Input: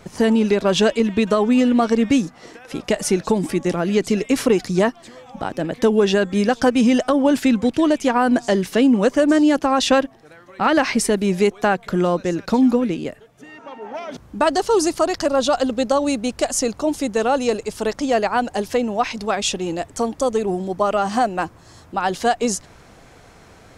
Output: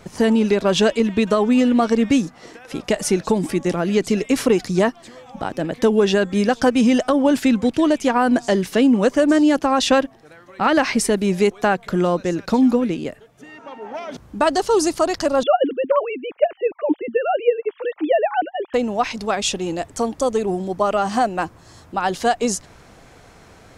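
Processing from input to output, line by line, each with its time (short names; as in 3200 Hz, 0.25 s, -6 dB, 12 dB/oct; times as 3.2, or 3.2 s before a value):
15.43–18.74 sine-wave speech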